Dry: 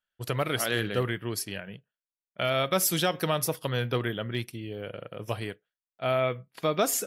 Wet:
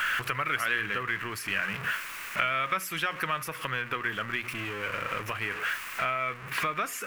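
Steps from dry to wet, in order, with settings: jump at every zero crossing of -33 dBFS; compression 6:1, threshold -36 dBFS, peak gain reduction 15.5 dB; high-order bell 1.7 kHz +15.5 dB; hum notches 60/120/180 Hz

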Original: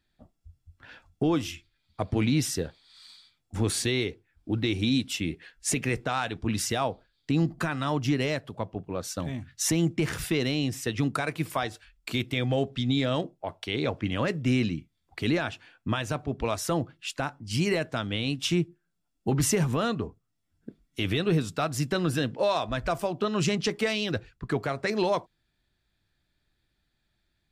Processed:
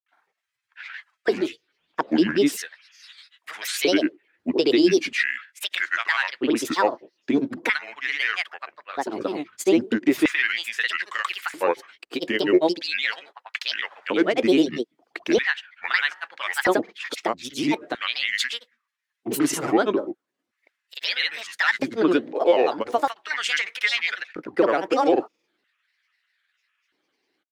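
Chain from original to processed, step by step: tone controls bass -9 dB, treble -8 dB; granulator 100 ms, pitch spread up and down by 7 st; LFO high-pass square 0.39 Hz 320–1800 Hz; trim +7.5 dB

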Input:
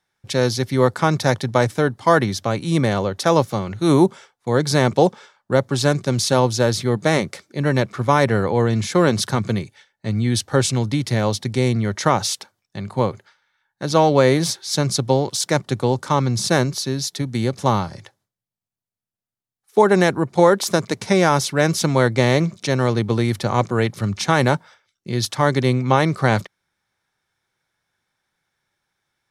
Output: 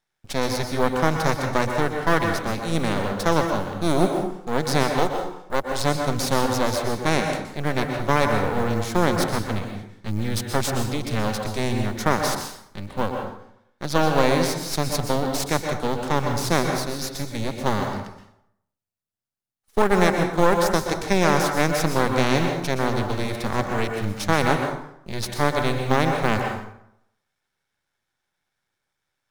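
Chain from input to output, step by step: half-wave rectifier; short-mantissa float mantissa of 4-bit; 4.83–5.80 s: peaking EQ 150 Hz -8.5 dB 2.4 oct; plate-style reverb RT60 0.75 s, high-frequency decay 0.65×, pre-delay 110 ms, DRR 3.5 dB; trim -1.5 dB

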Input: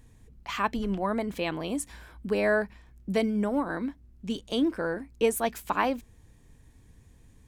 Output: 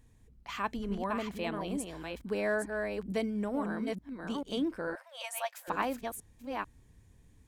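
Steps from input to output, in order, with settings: chunks repeated in reverse 443 ms, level -4 dB; 4.95–5.68 s: brick-wall FIR high-pass 510 Hz; trim -6.5 dB

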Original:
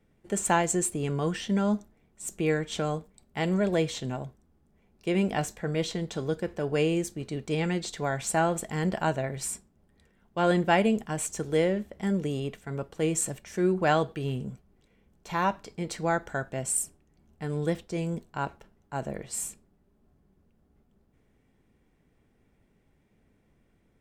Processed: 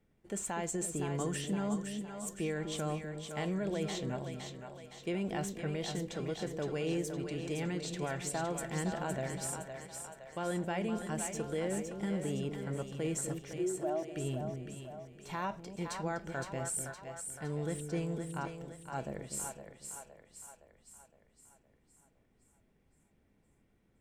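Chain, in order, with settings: 13.53–14.14 s: two resonant band-passes 470 Hz, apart 0.85 oct; peak limiter -21.5 dBFS, peak gain reduction 10.5 dB; two-band feedback delay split 500 Hz, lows 248 ms, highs 514 ms, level -6 dB; trim -6 dB

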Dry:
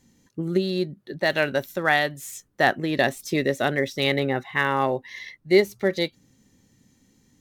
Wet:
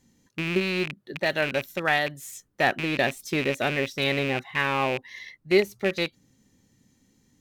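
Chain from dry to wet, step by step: rattle on loud lows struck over -33 dBFS, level -16 dBFS; trim -3 dB

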